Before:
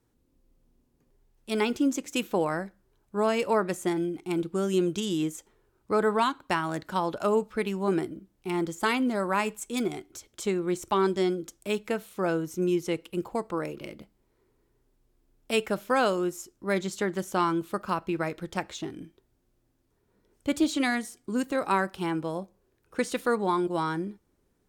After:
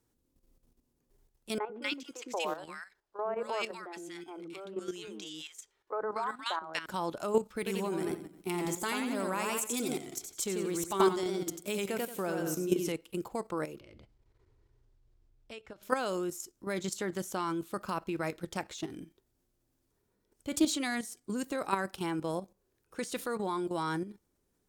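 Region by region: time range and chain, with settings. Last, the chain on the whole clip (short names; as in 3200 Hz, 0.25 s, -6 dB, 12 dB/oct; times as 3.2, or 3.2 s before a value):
1.58–6.86 three-band isolator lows -16 dB, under 390 Hz, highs -13 dB, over 5600 Hz + three bands offset in time mids, lows, highs 0.11/0.24 s, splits 370/1400 Hz
7.56–12.92 high shelf 11000 Hz +9 dB + warbling echo 89 ms, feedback 39%, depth 97 cents, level -4 dB
13.8–15.83 LPF 4700 Hz + resonant low shelf 130 Hz +8.5 dB, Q 3 + compressor 8:1, threshold -41 dBFS
whole clip: tone controls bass -1 dB, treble +6 dB; level quantiser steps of 11 dB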